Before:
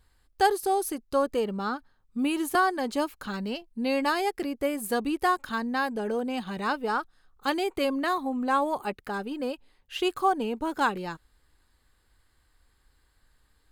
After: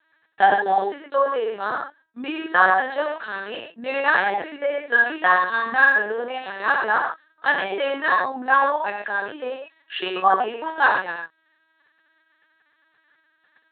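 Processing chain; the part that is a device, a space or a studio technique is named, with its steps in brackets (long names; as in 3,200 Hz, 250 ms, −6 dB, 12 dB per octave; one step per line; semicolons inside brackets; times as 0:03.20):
0:04.76–0:05.92: double-tracking delay 49 ms −6 dB
reverb whose tail is shaped and stops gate 150 ms flat, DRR 0.5 dB
talking toy (linear-prediction vocoder at 8 kHz pitch kept; high-pass filter 480 Hz 12 dB per octave; parametric band 1,700 Hz +12 dB 0.27 octaves)
level +4.5 dB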